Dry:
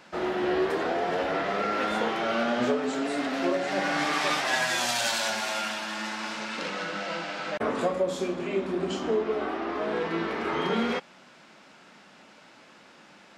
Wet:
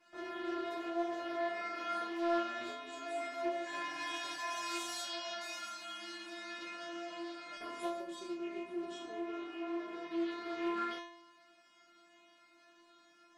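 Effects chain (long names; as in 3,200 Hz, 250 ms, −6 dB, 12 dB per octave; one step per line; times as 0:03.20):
0:03.69–0:04.57: healed spectral selection 680–2,700 Hz after
0:05.01–0:05.41: low-pass filter 5,200 Hz 24 dB per octave
0:07.52–0:08.00: high-shelf EQ 4,100 Hz +9 dB
stiff-string resonator 340 Hz, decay 0.76 s, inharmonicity 0.002
highs frequency-modulated by the lows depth 0.16 ms
level +7.5 dB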